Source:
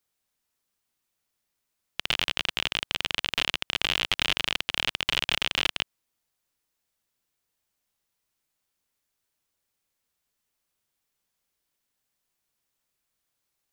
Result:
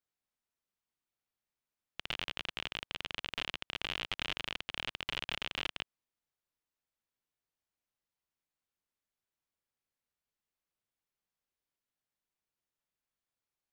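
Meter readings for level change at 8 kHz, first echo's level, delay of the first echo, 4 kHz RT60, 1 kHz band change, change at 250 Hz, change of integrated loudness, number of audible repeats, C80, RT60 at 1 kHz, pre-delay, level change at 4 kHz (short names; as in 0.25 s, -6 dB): -15.5 dB, none, none, none, -9.5 dB, -9.0 dB, -11.5 dB, none, none, none, none, -12.0 dB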